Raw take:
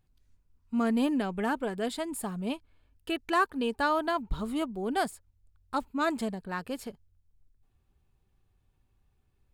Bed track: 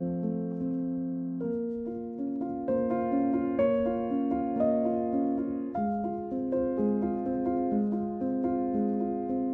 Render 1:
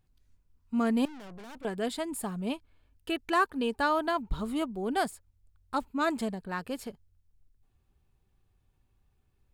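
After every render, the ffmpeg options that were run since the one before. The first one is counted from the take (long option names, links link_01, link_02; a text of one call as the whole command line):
ffmpeg -i in.wav -filter_complex "[0:a]asettb=1/sr,asplit=3[link_01][link_02][link_03];[link_01]atrim=end=1.054[link_04];[link_02]atrim=start=1.05:end=1.65,asetpts=PTS-STARTPTS,afade=type=in:duration=0.004:curve=qsin,afade=type=out:start_time=0.596:duration=0.004:curve=qsin,aeval=exprs='(tanh(178*val(0)+0.65)-tanh(0.65))/178':channel_layout=same[link_05];[link_03]atrim=start=1.646[link_06];[link_04][link_05]acrossfade=duration=0.004:curve1=hsin:curve2=qsin[link_07];[link_07][link_06]acrossfade=duration=0.004:curve1=qsin:curve2=hsin" out.wav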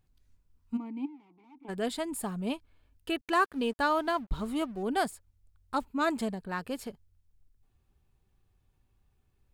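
ffmpeg -i in.wav -filter_complex "[0:a]asplit=3[link_01][link_02][link_03];[link_01]afade=type=out:start_time=0.76:duration=0.02[link_04];[link_02]asplit=3[link_05][link_06][link_07];[link_05]bandpass=frequency=300:width_type=q:width=8,volume=0dB[link_08];[link_06]bandpass=frequency=870:width_type=q:width=8,volume=-6dB[link_09];[link_07]bandpass=frequency=2240:width_type=q:width=8,volume=-9dB[link_10];[link_08][link_09][link_10]amix=inputs=3:normalize=0,afade=type=in:start_time=0.76:duration=0.02,afade=type=out:start_time=1.68:duration=0.02[link_11];[link_03]afade=type=in:start_time=1.68:duration=0.02[link_12];[link_04][link_11][link_12]amix=inputs=3:normalize=0,asettb=1/sr,asplit=3[link_13][link_14][link_15];[link_13]atrim=end=3.214[link_16];[link_14]atrim=start=3.21:end=4.83,asetpts=PTS-STARTPTS,afade=type=in:duration=0.004:curve=qsin,afade=type=out:start_time=1.616:duration=0.004:curve=qsin,aeval=exprs='sgn(val(0))*max(abs(val(0))-0.002,0)':channel_layout=same[link_17];[link_15]atrim=start=4.826[link_18];[link_16][link_17]acrossfade=duration=0.004:curve1=hsin:curve2=qsin[link_19];[link_19][link_18]acrossfade=duration=0.004:curve1=qsin:curve2=hsin" out.wav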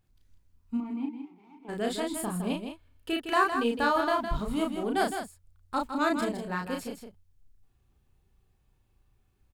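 ffmpeg -i in.wav -filter_complex "[0:a]asplit=2[link_01][link_02];[link_02]adelay=34,volume=-3dB[link_03];[link_01][link_03]amix=inputs=2:normalize=0,aecho=1:1:161:0.422" out.wav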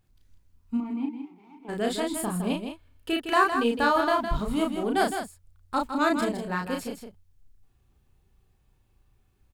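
ffmpeg -i in.wav -af "volume=3dB" out.wav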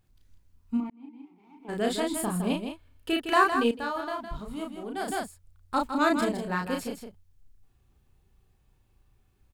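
ffmpeg -i in.wav -filter_complex "[0:a]asplit=4[link_01][link_02][link_03][link_04];[link_01]atrim=end=0.9,asetpts=PTS-STARTPTS,afade=type=out:start_time=0.896:duration=0.004:curve=hsin[link_05];[link_02]atrim=start=0.9:end=3.712,asetpts=PTS-STARTPTS,afade=type=in:duration=0.9[link_06];[link_03]atrim=start=3.708:end=5.082,asetpts=PTS-STARTPTS,volume=-9.5dB[link_07];[link_04]atrim=start=5.078[link_08];[link_05][link_06]concat=n=2:v=0:a=1[link_09];[link_09][link_07]acrossfade=duration=0.004:curve1=hsin:curve2=hsin[link_10];[link_10][link_08]acrossfade=duration=0.004:curve1=hsin:curve2=hsin" out.wav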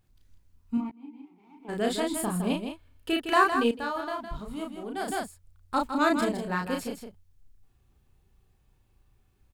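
ffmpeg -i in.wav -filter_complex "[0:a]asettb=1/sr,asplit=3[link_01][link_02][link_03];[link_01]atrim=end=0.764[link_04];[link_02]atrim=start=0.76:end=1.21,asetpts=PTS-STARTPTS,afade=type=in:duration=0.004:curve=qsin,afade=type=out:start_time=0.446:duration=0.004:curve=qsin,asplit=2[link_05][link_06];[link_06]adelay=14,volume=-6.5dB[link_07];[link_05][link_07]amix=inputs=2:normalize=0,atrim=end_sample=19845[link_08];[link_03]atrim=start=1.206[link_09];[link_04][link_08]acrossfade=duration=0.004:curve1=hsin:curve2=qsin[link_10];[link_10][link_09]acrossfade=duration=0.004:curve1=qsin:curve2=hsin" out.wav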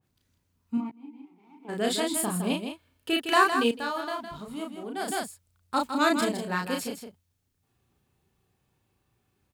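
ffmpeg -i in.wav -af "highpass=120,adynamicequalizer=threshold=0.0112:dfrequency=2200:dqfactor=0.7:tfrequency=2200:tqfactor=0.7:attack=5:release=100:ratio=0.375:range=3:mode=boostabove:tftype=highshelf" out.wav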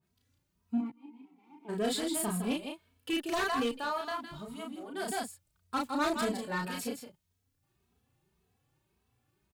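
ffmpeg -i in.wav -filter_complex "[0:a]asoftclip=type=tanh:threshold=-23.5dB,asplit=2[link_01][link_02];[link_02]adelay=2.8,afreqshift=1.8[link_03];[link_01][link_03]amix=inputs=2:normalize=1" out.wav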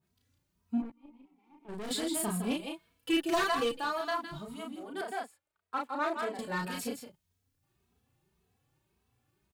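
ffmpeg -i in.wav -filter_complex "[0:a]asettb=1/sr,asplit=3[link_01][link_02][link_03];[link_01]atrim=end=0.824[link_04];[link_02]atrim=start=0.82:end=1.91,asetpts=PTS-STARTPTS,afade=type=in:duration=0.004:curve=qsin,afade=type=out:start_time=1.086:duration=0.004:curve=qsin,aeval=exprs='(tanh(79.4*val(0)+0.75)-tanh(0.75))/79.4':channel_layout=same[link_05];[link_03]atrim=start=1.906[link_06];[link_04][link_05]acrossfade=duration=0.004:curve1=hsin:curve2=qsin[link_07];[link_07][link_06]acrossfade=duration=0.004:curve1=qsin:curve2=hsin,asettb=1/sr,asplit=3[link_08][link_09][link_10];[link_08]atrim=end=2.594[link_11];[link_09]atrim=start=2.59:end=4.39,asetpts=PTS-STARTPTS,afade=type=in:duration=0.004:curve=qsin,afade=type=out:start_time=1.796:duration=0.004:curve=qsin,aecho=1:1:6:0.67,atrim=end_sample=79380[link_12];[link_10]atrim=start=4.386[link_13];[link_11][link_12]acrossfade=duration=0.004:curve1=hsin:curve2=qsin[link_14];[link_14][link_13]acrossfade=duration=0.004:curve1=qsin:curve2=hsin,asettb=1/sr,asplit=3[link_15][link_16][link_17];[link_15]atrim=end=5.014[link_18];[link_16]atrim=start=5.01:end=6.39,asetpts=PTS-STARTPTS,afade=type=in:duration=0.004:curve=qsin,afade=type=out:start_time=1.376:duration=0.004:curve=qsin,acrossover=split=330 2700:gain=0.0708 1 0.2[link_19][link_20][link_21];[link_19][link_20][link_21]amix=inputs=3:normalize=0[link_22];[link_17]atrim=start=6.386[link_23];[link_18][link_22]acrossfade=duration=0.004:curve1=hsin:curve2=qsin[link_24];[link_24][link_23]acrossfade=duration=0.004:curve1=qsin:curve2=hsin" out.wav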